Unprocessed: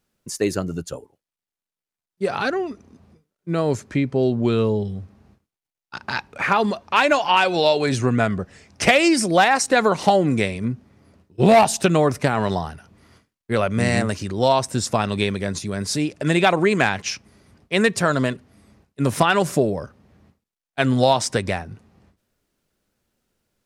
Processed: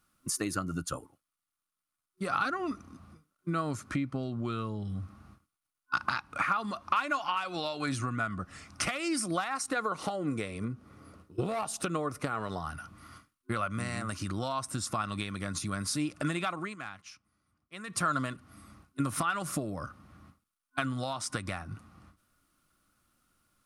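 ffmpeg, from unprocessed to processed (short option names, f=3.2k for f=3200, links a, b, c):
-filter_complex "[0:a]asplit=3[a][b][c];[a]afade=t=out:st=9.73:d=0.02[d];[b]equalizer=f=450:t=o:w=0.57:g=12,afade=t=in:st=9.73:d=0.02,afade=t=out:st=12.59:d=0.02[e];[c]afade=t=in:st=12.59:d=0.02[f];[d][e][f]amix=inputs=3:normalize=0,asplit=3[g][h][i];[g]atrim=end=16.76,asetpts=PTS-STARTPTS,afade=t=out:st=16.51:d=0.25:silence=0.0707946[j];[h]atrim=start=16.76:end=17.87,asetpts=PTS-STARTPTS,volume=-23dB[k];[i]atrim=start=17.87,asetpts=PTS-STARTPTS,afade=t=in:d=0.25:silence=0.0707946[l];[j][k][l]concat=n=3:v=0:a=1,equalizer=f=400:t=o:w=0.89:g=-11.5,acompressor=threshold=-31dB:ratio=16,superequalizer=6b=2.24:10b=3.16:16b=2"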